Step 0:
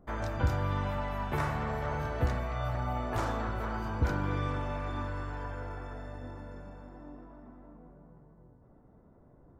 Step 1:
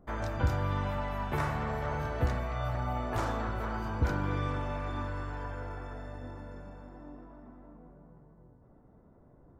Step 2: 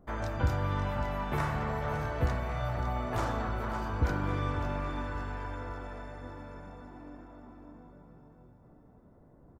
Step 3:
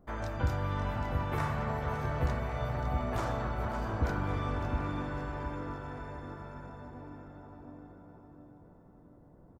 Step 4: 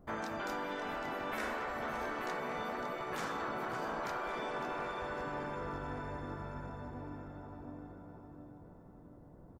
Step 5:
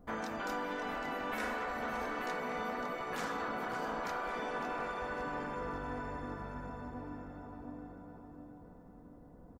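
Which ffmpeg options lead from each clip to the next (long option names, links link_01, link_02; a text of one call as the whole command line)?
ffmpeg -i in.wav -af anull out.wav
ffmpeg -i in.wav -af "aecho=1:1:556|1112|1668|2224|2780:0.299|0.146|0.0717|0.0351|0.0172" out.wav
ffmpeg -i in.wav -filter_complex "[0:a]asplit=2[link_01][link_02];[link_02]adelay=712,lowpass=frequency=1000:poles=1,volume=-4dB,asplit=2[link_03][link_04];[link_04]adelay=712,lowpass=frequency=1000:poles=1,volume=0.44,asplit=2[link_05][link_06];[link_06]adelay=712,lowpass=frequency=1000:poles=1,volume=0.44,asplit=2[link_07][link_08];[link_08]adelay=712,lowpass=frequency=1000:poles=1,volume=0.44,asplit=2[link_09][link_10];[link_10]adelay=712,lowpass=frequency=1000:poles=1,volume=0.44,asplit=2[link_11][link_12];[link_12]adelay=712,lowpass=frequency=1000:poles=1,volume=0.44[link_13];[link_01][link_03][link_05][link_07][link_09][link_11][link_13]amix=inputs=7:normalize=0,volume=-2dB" out.wav
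ffmpeg -i in.wav -af "afftfilt=real='re*lt(hypot(re,im),0.0631)':imag='im*lt(hypot(re,im),0.0631)':win_size=1024:overlap=0.75,volume=1.5dB" out.wav
ffmpeg -i in.wav -af "aecho=1:1:4.1:0.4" out.wav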